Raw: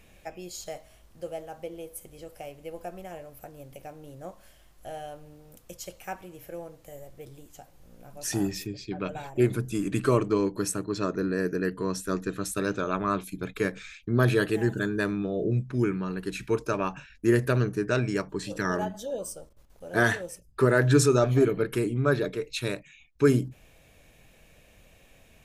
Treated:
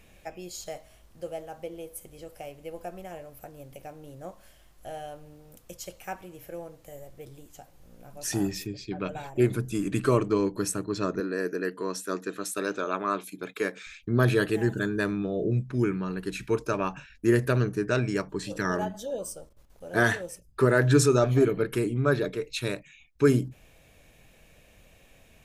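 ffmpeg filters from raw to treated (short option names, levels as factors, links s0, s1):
-filter_complex "[0:a]asettb=1/sr,asplit=3[s0][s1][s2];[s0]atrim=end=11.204[s3];[s1]atrim=start=11.2:end=13.87,asetpts=PTS-STARTPTS,afade=t=in:d=0.004:c=qsin,afade=t=out:st=2.666:d=0.004:c=qsin,highpass=290[s4];[s2]atrim=start=13.866[s5];[s3][s4]acrossfade=d=0.004:c1=hsin:c2=qsin[s6];[s6][s5]acrossfade=d=0.004:c1=qsin:c2=hsin"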